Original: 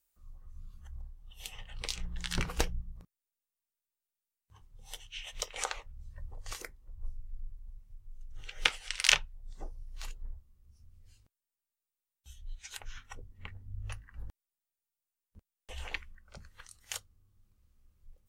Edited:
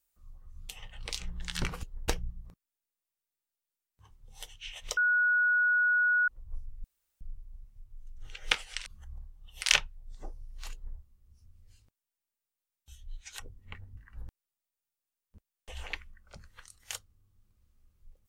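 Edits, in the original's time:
0:00.69–0:01.45: move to 0:09.00
0:05.48–0:06.79: beep over 1,460 Hz −22.5 dBFS
0:07.35: splice in room tone 0.37 s
0:10.11–0:10.36: duplicate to 0:02.59
0:12.77–0:13.12: remove
0:13.70–0:13.98: remove

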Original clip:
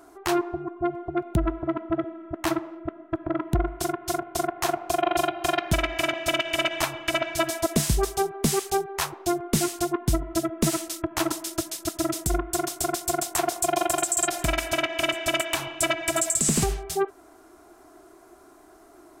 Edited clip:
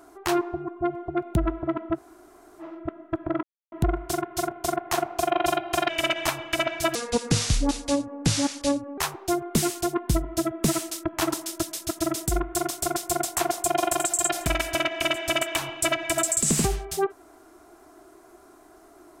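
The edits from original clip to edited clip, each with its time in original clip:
0:01.96–0:02.61: fill with room tone, crossfade 0.06 s
0:03.43: splice in silence 0.29 s
0:05.60–0:06.44: remove
0:07.50–0:08.96: play speed 72%

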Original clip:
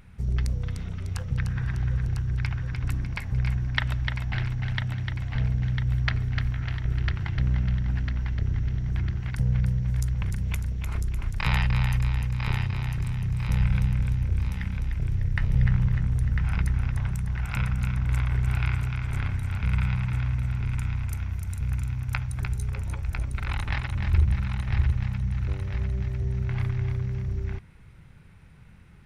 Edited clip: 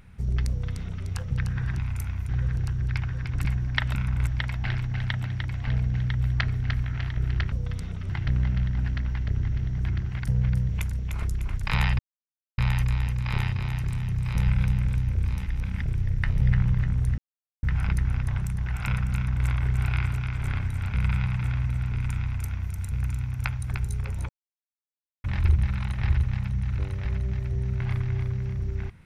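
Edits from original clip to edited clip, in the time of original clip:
0:00.49–0:01.06: duplicate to 0:07.20
0:02.94–0:03.45: remove
0:09.80–0:10.42: remove
0:11.72: splice in silence 0.59 s
0:14.60–0:14.96: reverse
0:16.32: splice in silence 0.45 s
0:17.84–0:18.16: duplicate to 0:03.95
0:20.91–0:21.42: duplicate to 0:01.78
0:22.98–0:23.93: silence

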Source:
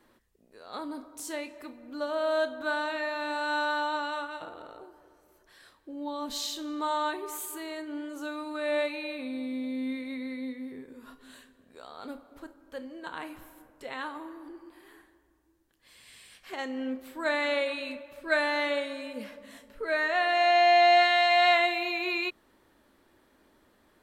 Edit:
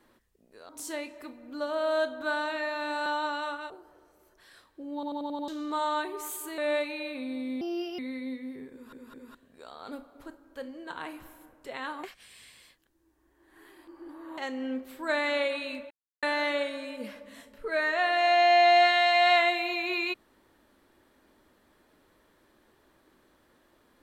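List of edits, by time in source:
0:00.69–0:01.09: remove
0:03.46–0:03.76: remove
0:04.40–0:04.79: remove
0:06.03: stutter in place 0.09 s, 6 plays
0:07.67–0:08.62: remove
0:09.65–0:10.15: play speed 133%
0:10.88: stutter in place 0.21 s, 3 plays
0:14.20–0:16.54: reverse
0:18.07–0:18.39: silence

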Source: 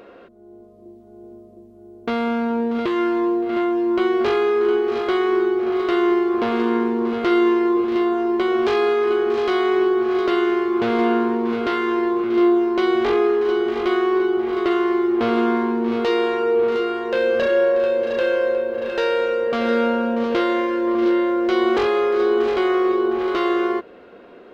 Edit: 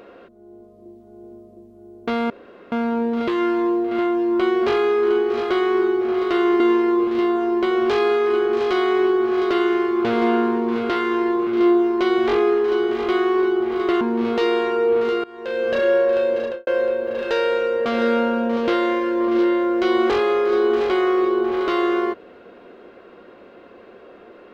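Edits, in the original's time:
0:02.30: splice in room tone 0.42 s
0:06.18–0:07.37: remove
0:14.78–0:15.68: remove
0:16.91–0:17.51: fade in, from −21 dB
0:18.04–0:18.34: fade out and dull

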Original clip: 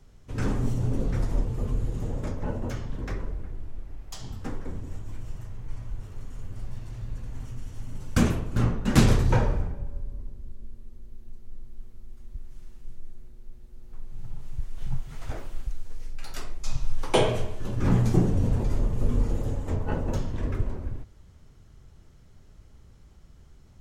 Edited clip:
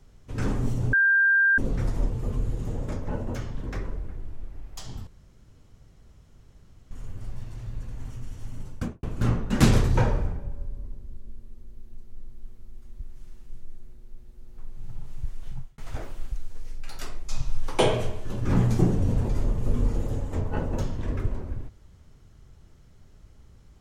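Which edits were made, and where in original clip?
0:00.93: insert tone 1,590 Hz −16.5 dBFS 0.65 s
0:04.42–0:06.26: fill with room tone
0:07.91–0:08.38: fade out and dull
0:14.70–0:15.13: fade out

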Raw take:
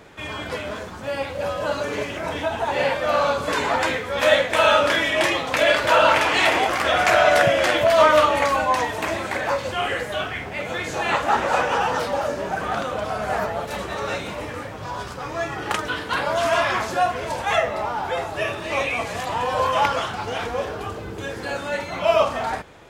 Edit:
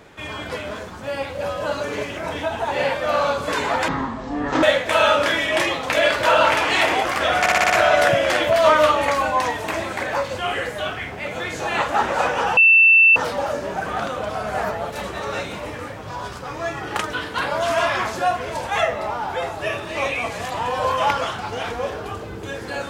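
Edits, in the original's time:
0:03.88–0:04.27: play speed 52%
0:07.04: stutter 0.06 s, 6 plays
0:11.91: insert tone 2,670 Hz −8.5 dBFS 0.59 s

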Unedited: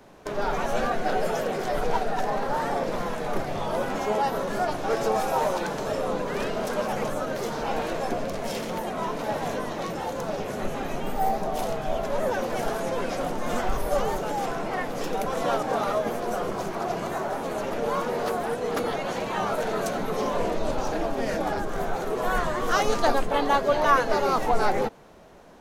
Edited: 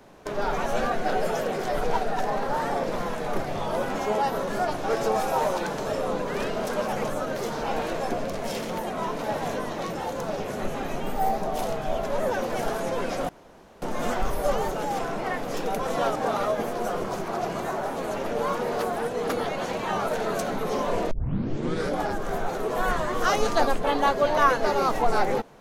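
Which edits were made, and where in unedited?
0:13.29: splice in room tone 0.53 s
0:20.58: tape start 0.88 s

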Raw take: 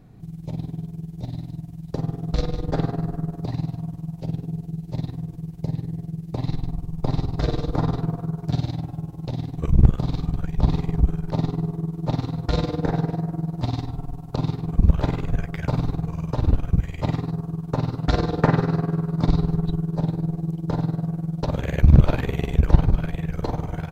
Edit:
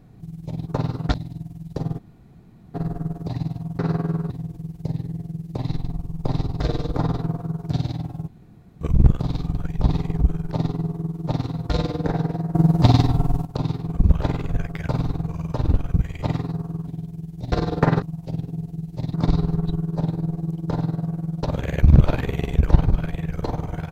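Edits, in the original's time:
0:00.67–0:01.32: swap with 0:17.66–0:18.13
0:02.17–0:02.92: fill with room tone
0:03.97–0:05.09: swap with 0:18.63–0:19.14
0:09.07–0:09.60: fill with room tone
0:13.34–0:14.24: clip gain +11 dB

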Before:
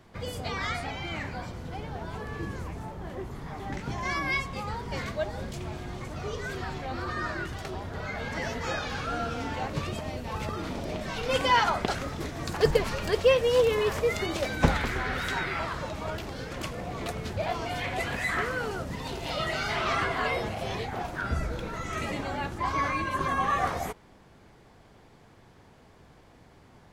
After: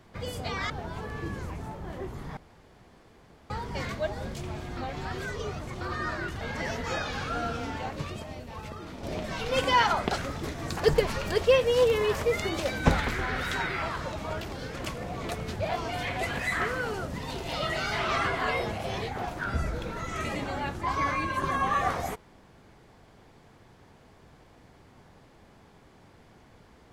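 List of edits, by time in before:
0:00.70–0:01.87: remove
0:03.54–0:04.67: fill with room tone
0:05.94–0:06.98: reverse
0:07.58–0:08.18: remove
0:09.27–0:10.80: fade out quadratic, to −7.5 dB

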